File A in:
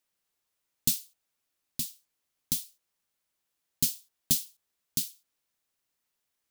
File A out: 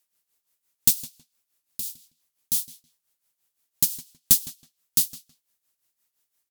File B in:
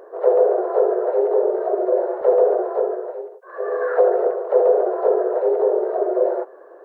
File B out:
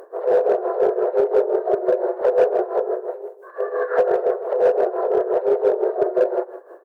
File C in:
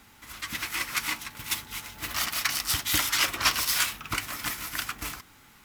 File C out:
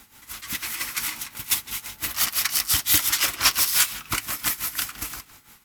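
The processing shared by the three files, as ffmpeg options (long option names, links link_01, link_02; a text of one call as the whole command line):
ffmpeg -i in.wav -filter_complex "[0:a]aemphasis=mode=production:type=cd,tremolo=f=5.8:d=0.73,asplit=2[link_01][link_02];[link_02]aeval=exprs='0.15*(abs(mod(val(0)/0.15+3,4)-2)-1)':channel_layout=same,volume=-11dB[link_03];[link_01][link_03]amix=inputs=2:normalize=0,asplit=2[link_04][link_05];[link_05]adelay=161,lowpass=frequency=4200:poles=1,volume=-14.5dB,asplit=2[link_06][link_07];[link_07]adelay=161,lowpass=frequency=4200:poles=1,volume=0.2[link_08];[link_04][link_06][link_08]amix=inputs=3:normalize=0,volume=1dB" out.wav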